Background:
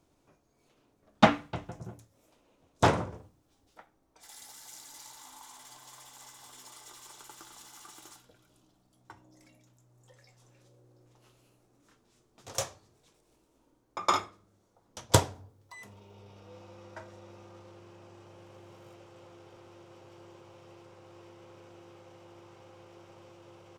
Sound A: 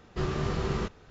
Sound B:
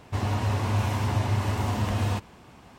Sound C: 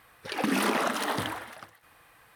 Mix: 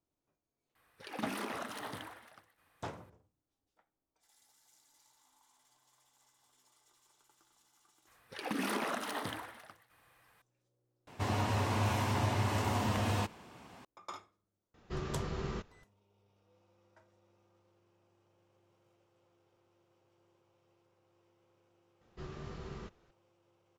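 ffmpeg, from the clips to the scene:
ffmpeg -i bed.wav -i cue0.wav -i cue1.wav -i cue2.wav -filter_complex "[3:a]asplit=2[link_01][link_02];[1:a]asplit=2[link_03][link_04];[0:a]volume=-19.5dB[link_05];[2:a]highpass=frequency=170:poles=1[link_06];[link_01]atrim=end=2.35,asetpts=PTS-STARTPTS,volume=-13.5dB,afade=type=in:duration=0.004:curve=hsin,afade=type=out:start_time=2.346:duration=0.004:curve=hsin,adelay=750[link_07];[link_02]atrim=end=2.35,asetpts=PTS-STARTPTS,volume=-9dB,afade=type=in:duration=0.004:curve=hsin,afade=type=out:start_time=2.346:duration=0.004:curve=hsin,adelay=8070[link_08];[link_06]atrim=end=2.78,asetpts=PTS-STARTPTS,volume=-2.5dB,afade=type=in:duration=0.004:curve=hsin,afade=type=out:start_time=2.776:duration=0.004:curve=hsin,adelay=11070[link_09];[link_03]atrim=end=1.1,asetpts=PTS-STARTPTS,volume=-8.5dB,afade=type=in:duration=0.004:curve=hsin,afade=type=out:start_time=1.096:duration=0.004:curve=hsin,adelay=14740[link_10];[link_04]atrim=end=1.1,asetpts=PTS-STARTPTS,volume=-15.5dB,afade=type=in:duration=0.004:curve=hsin,afade=type=out:start_time=1.096:duration=0.004:curve=hsin,adelay=22010[link_11];[link_05][link_07][link_08][link_09][link_10][link_11]amix=inputs=6:normalize=0" out.wav

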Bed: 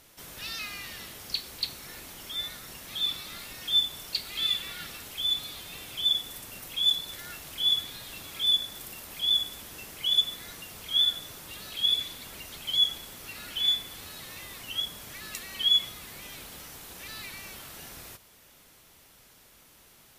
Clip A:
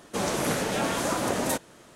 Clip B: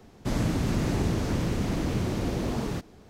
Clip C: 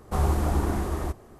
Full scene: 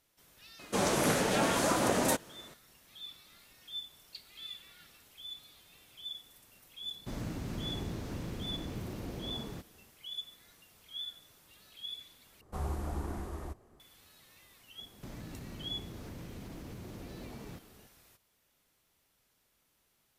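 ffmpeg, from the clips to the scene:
ffmpeg -i bed.wav -i cue0.wav -i cue1.wav -i cue2.wav -filter_complex "[2:a]asplit=2[link_01][link_02];[0:a]volume=-17.5dB[link_03];[link_02]acompressor=threshold=-35dB:ratio=6:attack=3.2:release=140:knee=1:detection=peak[link_04];[link_03]asplit=2[link_05][link_06];[link_05]atrim=end=12.414[link_07];[3:a]atrim=end=1.39,asetpts=PTS-STARTPTS,volume=-12.5dB[link_08];[link_06]atrim=start=13.796[link_09];[1:a]atrim=end=1.95,asetpts=PTS-STARTPTS,volume=-1.5dB,afade=type=in:duration=0.004:curve=hsin,afade=type=out:start_time=1.946:duration=0.004:curve=hsin,adelay=590[link_10];[link_01]atrim=end=3.09,asetpts=PTS-STARTPTS,volume=-12.5dB,afade=type=in:duration=0.004:curve=hsin,afade=type=out:start_time=3.086:duration=0.004:curve=hsin,adelay=6810[link_11];[link_04]atrim=end=3.09,asetpts=PTS-STARTPTS,volume=-7.5dB,afade=type=in:duration=0.004:curve=hsin,afade=type=out:start_time=3.086:duration=0.004:curve=hsin,adelay=14780[link_12];[link_07][link_08]acrossfade=duration=0.004:curve1=hsin:curve2=hsin[link_13];[link_13][link_09]acrossfade=duration=0.004:curve1=hsin:curve2=hsin[link_14];[link_14][link_10][link_11][link_12]amix=inputs=4:normalize=0" out.wav

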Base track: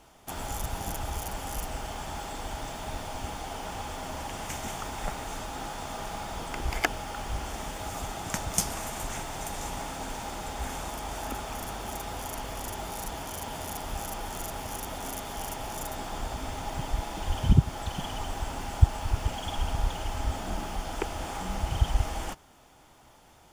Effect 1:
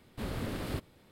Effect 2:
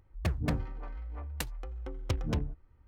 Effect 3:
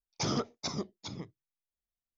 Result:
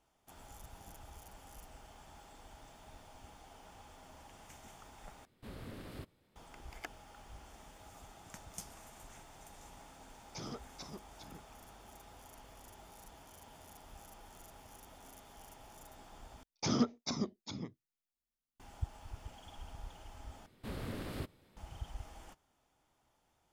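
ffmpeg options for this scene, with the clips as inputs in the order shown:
ffmpeg -i bed.wav -i cue0.wav -i cue1.wav -i cue2.wav -filter_complex "[1:a]asplit=2[link_01][link_02];[3:a]asplit=2[link_03][link_04];[0:a]volume=-19.5dB[link_05];[link_04]equalizer=frequency=240:width_type=o:width=0.34:gain=9.5[link_06];[link_05]asplit=4[link_07][link_08][link_09][link_10];[link_07]atrim=end=5.254[link_11];[link_01]atrim=end=1.11,asetpts=PTS-STARTPTS,volume=-11.5dB[link_12];[link_08]atrim=start=6.356:end=16.434[link_13];[link_06]atrim=end=2.17,asetpts=PTS-STARTPTS,volume=-3dB[link_14];[link_09]atrim=start=18.596:end=20.464[link_15];[link_02]atrim=end=1.11,asetpts=PTS-STARTPTS,volume=-5.5dB[link_16];[link_10]atrim=start=21.566[link_17];[link_03]atrim=end=2.17,asetpts=PTS-STARTPTS,volume=-13.5dB,afade=type=in:duration=0.004:curve=hsin,afade=type=out:start_time=2.166:duration=0.004:curve=hsin,adelay=10150[link_18];[link_11][link_12]acrossfade=duration=0.004:curve1=hsin:curve2=hsin[link_19];[link_19][link_13]acrossfade=duration=0.004:curve1=hsin:curve2=hsin[link_20];[link_20][link_14]acrossfade=duration=0.004:curve1=hsin:curve2=hsin[link_21];[link_21][link_15]acrossfade=duration=0.004:curve1=hsin:curve2=hsin[link_22];[link_22][link_16]acrossfade=duration=0.004:curve1=hsin:curve2=hsin[link_23];[link_23][link_17]acrossfade=duration=0.004:curve1=hsin:curve2=hsin[link_24];[link_24][link_18]amix=inputs=2:normalize=0" out.wav

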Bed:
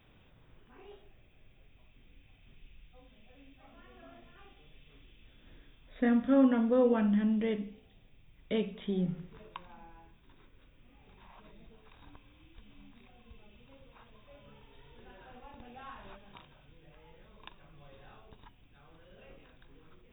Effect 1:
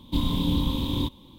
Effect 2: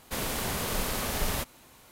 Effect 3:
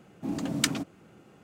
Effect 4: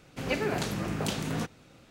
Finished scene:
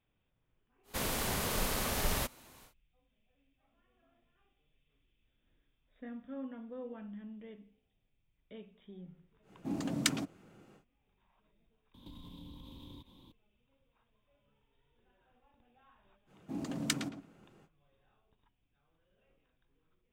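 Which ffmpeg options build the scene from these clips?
ffmpeg -i bed.wav -i cue0.wav -i cue1.wav -i cue2.wav -filter_complex "[3:a]asplit=2[link_01][link_02];[0:a]volume=-18.5dB[link_03];[1:a]acompressor=threshold=-39dB:ratio=6:attack=3.2:release=140:knee=1:detection=peak[link_04];[link_02]asplit=2[link_05][link_06];[link_06]adelay=110,lowpass=frequency=2200:poles=1,volume=-8dB,asplit=2[link_07][link_08];[link_08]adelay=110,lowpass=frequency=2200:poles=1,volume=0.17,asplit=2[link_09][link_10];[link_10]adelay=110,lowpass=frequency=2200:poles=1,volume=0.17[link_11];[link_05][link_07][link_09][link_11]amix=inputs=4:normalize=0[link_12];[2:a]atrim=end=1.91,asetpts=PTS-STARTPTS,volume=-3dB,afade=type=in:duration=0.1,afade=type=out:start_time=1.81:duration=0.1,adelay=830[link_13];[link_01]atrim=end=1.43,asetpts=PTS-STARTPTS,volume=-4.5dB,afade=type=in:duration=0.1,afade=type=out:start_time=1.33:duration=0.1,adelay=9420[link_14];[link_04]atrim=end=1.38,asetpts=PTS-STARTPTS,volume=-9.5dB,afade=type=in:duration=0.004:curve=hsin,afade=type=out:start_time=1.376:duration=0.004:curve=hsin,adelay=11940[link_15];[link_12]atrim=end=1.43,asetpts=PTS-STARTPTS,volume=-7.5dB,afade=type=in:duration=0.05,afade=type=out:start_time=1.38:duration=0.05,adelay=16260[link_16];[link_03][link_13][link_14][link_15][link_16]amix=inputs=5:normalize=0" out.wav

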